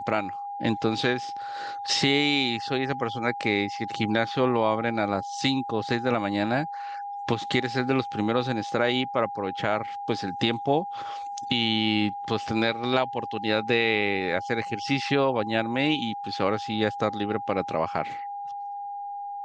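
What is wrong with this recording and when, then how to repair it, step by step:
whistle 810 Hz −32 dBFS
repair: notch filter 810 Hz, Q 30

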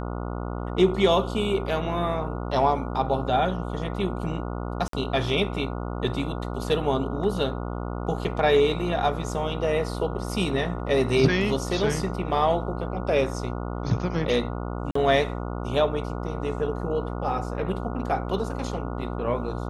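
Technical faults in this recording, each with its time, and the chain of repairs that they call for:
mains buzz 60 Hz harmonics 24 −31 dBFS
0:04.88–0:04.93: drop-out 53 ms
0:14.91–0:14.95: drop-out 44 ms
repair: hum removal 60 Hz, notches 24
repair the gap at 0:04.88, 53 ms
repair the gap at 0:14.91, 44 ms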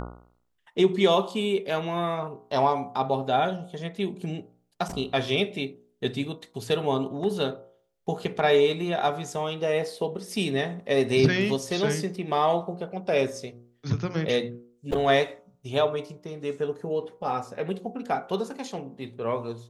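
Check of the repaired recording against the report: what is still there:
none of them is left

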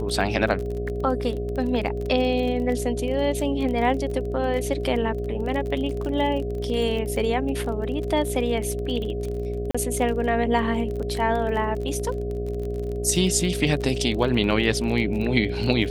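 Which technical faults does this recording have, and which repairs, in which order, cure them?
mains buzz 60 Hz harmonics 12 −30 dBFS
surface crackle 31 per second −29 dBFS
whistle 410 Hz −29 dBFS
0:09.71–0:09.74: drop-out 35 ms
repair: click removal
hum removal 60 Hz, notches 12
notch filter 410 Hz, Q 30
repair the gap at 0:09.71, 35 ms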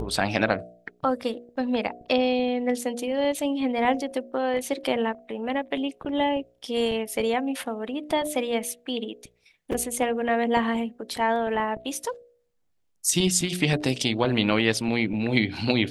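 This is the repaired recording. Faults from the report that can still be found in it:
none of them is left

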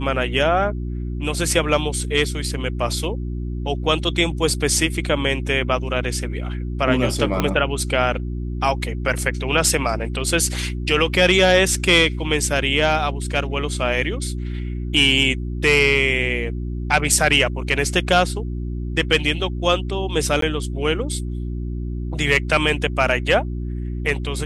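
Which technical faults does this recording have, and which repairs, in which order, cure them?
mains hum 60 Hz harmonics 6 −26 dBFS
0:07.40: click −5 dBFS
0:20.41–0:20.42: drop-out 13 ms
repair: click removal
hum removal 60 Hz, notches 6
repair the gap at 0:20.41, 13 ms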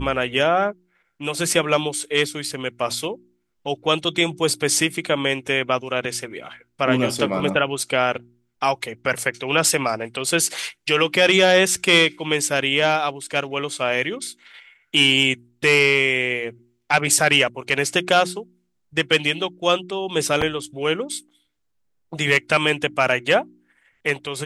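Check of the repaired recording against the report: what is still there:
0:07.40: click

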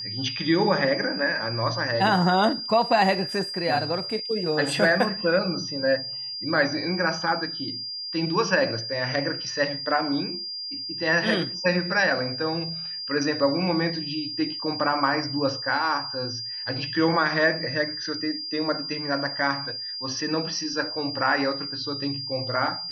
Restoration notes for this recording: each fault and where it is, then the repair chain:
whistle 4,800 Hz −31 dBFS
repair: notch filter 4,800 Hz, Q 30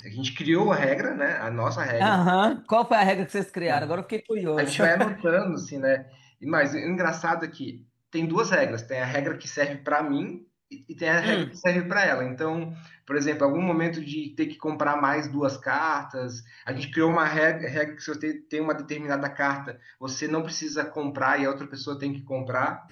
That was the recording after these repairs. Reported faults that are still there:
none of them is left

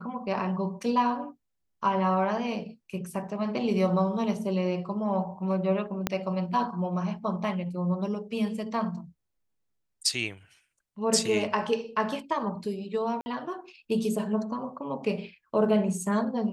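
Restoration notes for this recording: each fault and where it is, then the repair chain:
0:06.07: click −10 dBFS
0:13.21–0:13.26: drop-out 50 ms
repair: click removal
repair the gap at 0:13.21, 50 ms

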